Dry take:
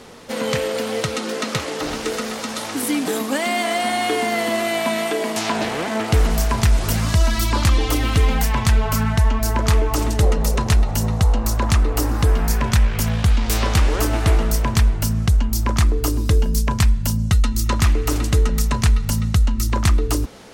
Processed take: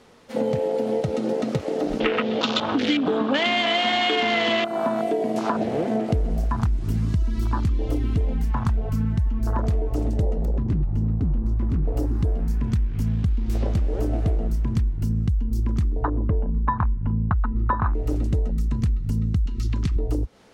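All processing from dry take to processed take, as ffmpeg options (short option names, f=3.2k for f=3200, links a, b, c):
-filter_complex "[0:a]asettb=1/sr,asplit=3[a][b][c];[a]atrim=end=2.004[d];[b]atrim=start=2:end=4.65,asetpts=PTS-STARTPTS,afade=t=in:d=0.004:c=qsin,afade=t=out:st=2.646:d=0.004:c=qsin,acontrast=83,lowpass=f=3.3k:t=q:w=3.6,aecho=1:1:312:0.168,atrim=end_sample=116865[e];[c]atrim=start=4.646[f];[d][e]acrossfade=d=0.004:c1=hsin:c2=qsin[g];[g][f]acrossfade=d=0.004:c1=qsin:c2=hsin,asettb=1/sr,asplit=3[h][i][j];[h]atrim=end=10.454[k];[i]atrim=start=10.45:end=11.88,asetpts=PTS-STARTPTS,afade=t=in:d=0.004:c=qsin,afade=t=out:st=1.426:d=0.004:c=qsin,lowpass=f=1.1k:p=1,aeval=exprs='0.2*(abs(mod(val(0)/0.2+3,4)-2)-1)':c=same[l];[j]atrim=start=11.876[m];[k][l]acrossfade=d=0.004:c1=hsin:c2=qsin[n];[n][m]acrossfade=d=0.004:c1=qsin:c2=hsin,asettb=1/sr,asplit=3[o][p][q];[o]atrim=end=16.034[r];[p]atrim=start=16.03:end=17.94,asetpts=PTS-STARTPTS,afade=t=in:d=0.004:c=qsin,afade=t=out:st=1.906:d=0.004:c=qsin,lowpass=f=2.3k:w=0.5412,lowpass=f=2.3k:w=1.3066,equalizer=f=1k:w=1.4:g=13[s];[q]atrim=start=17.936[t];[r][s]acrossfade=d=0.004:c1=hsin:c2=qsin[u];[u][t]acrossfade=d=0.004:c1=qsin:c2=hsin,asettb=1/sr,asplit=3[v][w][x];[v]atrim=end=19.464[y];[w]atrim=start=19.46:end=19.96,asetpts=PTS-STARTPTS,afade=t=in:d=0.004:c=qsin,afade=t=out:st=0.496:d=0.004:c=qsin,aecho=1:1:7:0.32,atrim=end_sample=22050,acrossover=split=380|850|4600[z][aa][ab][ac];[z]acompressor=threshold=-21dB:ratio=3[ad];[aa]acompressor=threshold=-44dB:ratio=3[ae];[ab]acompressor=threshold=-35dB:ratio=3[af];[ac]acompressor=threshold=-42dB:ratio=3[ag];[ad][ae][af][ag]amix=inputs=4:normalize=0,equalizer=f=4.1k:w=0.4:g=12[ah];[x]atrim=start=19.956[ai];[y][ah]acrossfade=d=0.004:c1=hsin:c2=qsin[aj];[aj][ai]acrossfade=d=0.004:c1=qsin:c2=hsin,afwtdn=0.126,highshelf=f=6.1k:g=-6,acompressor=threshold=-26dB:ratio=6,volume=6dB"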